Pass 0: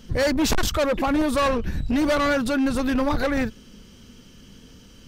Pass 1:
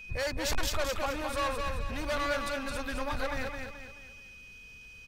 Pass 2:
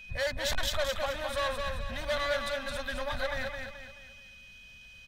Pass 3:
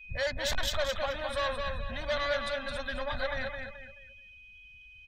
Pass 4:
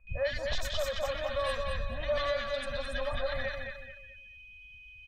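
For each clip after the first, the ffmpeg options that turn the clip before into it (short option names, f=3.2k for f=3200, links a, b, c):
-filter_complex "[0:a]equalizer=f=250:t=o:w=1.5:g=-13,aeval=exprs='val(0)+0.0158*sin(2*PI*2500*n/s)':c=same,asplit=2[a][b];[b]aecho=0:1:215|430|645|860|1075:0.596|0.238|0.0953|0.0381|0.0152[c];[a][c]amix=inputs=2:normalize=0,volume=-8dB"
-af "superequalizer=6b=0.355:7b=0.447:8b=1.58:11b=1.78:13b=2.24,volume=-2dB"
-af "afftdn=nr=18:nf=-48"
-filter_complex "[0:a]aecho=1:1:1.7:0.36,acrossover=split=1300|5500[a][b][c];[b]adelay=70[d];[c]adelay=160[e];[a][d][e]amix=inputs=3:normalize=0,alimiter=limit=-21.5dB:level=0:latency=1:release=418"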